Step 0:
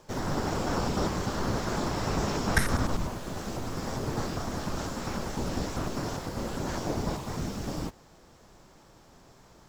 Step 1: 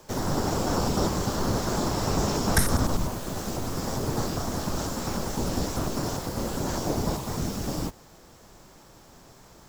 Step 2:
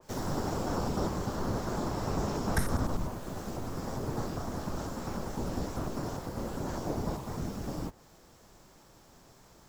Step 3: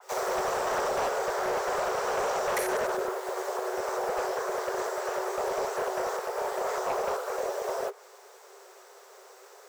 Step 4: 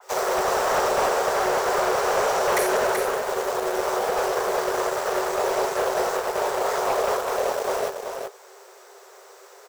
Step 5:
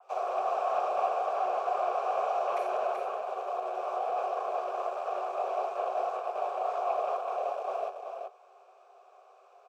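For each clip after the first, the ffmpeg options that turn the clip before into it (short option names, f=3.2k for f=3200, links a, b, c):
-filter_complex "[0:a]highshelf=f=9.1k:g=10.5,acrossover=split=120|1500|2800[a][b][c][d];[c]acompressor=threshold=-56dB:ratio=6[e];[a][b][e][d]amix=inputs=4:normalize=0,volume=3.5dB"
-af "adynamicequalizer=threshold=0.00398:dfrequency=2400:dqfactor=0.7:tfrequency=2400:tqfactor=0.7:attack=5:release=100:ratio=0.375:range=3.5:mode=cutabove:tftype=highshelf,volume=-6dB"
-filter_complex "[0:a]acrossover=split=130[a][b];[a]asoftclip=type=tanh:threshold=-36.5dB[c];[c][b]amix=inputs=2:normalize=0,afreqshift=370,volume=30dB,asoftclip=hard,volume=-30dB,volume=5.5dB"
-filter_complex "[0:a]asplit=2[a][b];[b]acrusher=bits=4:mix=0:aa=0.000001,volume=-9dB[c];[a][c]amix=inputs=2:normalize=0,aecho=1:1:381:0.501,volume=3dB"
-filter_complex "[0:a]asplit=3[a][b][c];[a]bandpass=f=730:t=q:w=8,volume=0dB[d];[b]bandpass=f=1.09k:t=q:w=8,volume=-6dB[e];[c]bandpass=f=2.44k:t=q:w=8,volume=-9dB[f];[d][e][f]amix=inputs=3:normalize=0"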